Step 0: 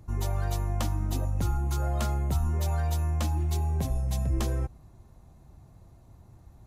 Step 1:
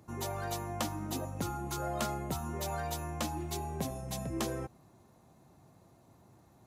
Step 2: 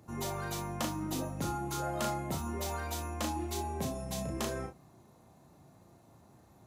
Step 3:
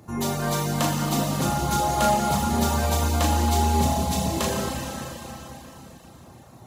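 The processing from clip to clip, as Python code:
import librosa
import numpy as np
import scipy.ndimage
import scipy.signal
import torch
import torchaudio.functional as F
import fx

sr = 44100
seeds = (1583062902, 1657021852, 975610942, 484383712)

y1 = scipy.signal.sosfilt(scipy.signal.butter(2, 190.0, 'highpass', fs=sr, output='sos'), x)
y2 = 10.0 ** (-24.0 / 20.0) * np.tanh(y1 / 10.0 ** (-24.0 / 20.0))
y2 = fx.room_early_taps(y2, sr, ms=(35, 61), db=(-4.0, -11.5))
y3 = fx.rev_schroeder(y2, sr, rt60_s=3.8, comb_ms=30, drr_db=-2.5)
y3 = fx.dereverb_blind(y3, sr, rt60_s=0.54)
y3 = F.gain(torch.from_numpy(y3), 9.0).numpy()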